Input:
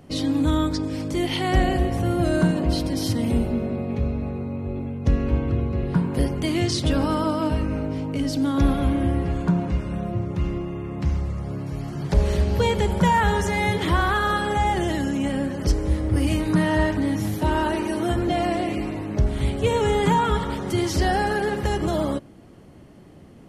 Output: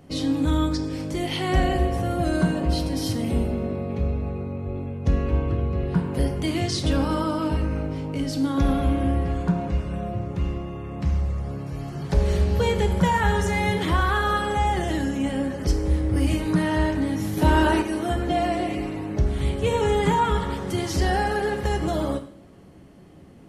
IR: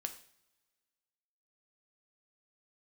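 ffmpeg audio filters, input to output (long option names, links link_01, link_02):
-filter_complex "[1:a]atrim=start_sample=2205[link_01];[0:a][link_01]afir=irnorm=-1:irlink=0,asettb=1/sr,asplit=3[link_02][link_03][link_04];[link_02]atrim=end=17.374[link_05];[link_03]atrim=start=17.37:end=17.82,asetpts=PTS-STARTPTS,afade=type=in:duration=0.004:curve=qsin,afade=type=out:start_time=0.446:duration=0.004:curve=qsin,acontrast=34[link_06];[link_04]atrim=start=17.816[link_07];[link_05][link_06]acrossfade=duration=0.004:curve1=hsin:curve2=qsin[link_08];[link_08][link_07]acrossfade=duration=0.004:curve1=qsin:curve2=hsin"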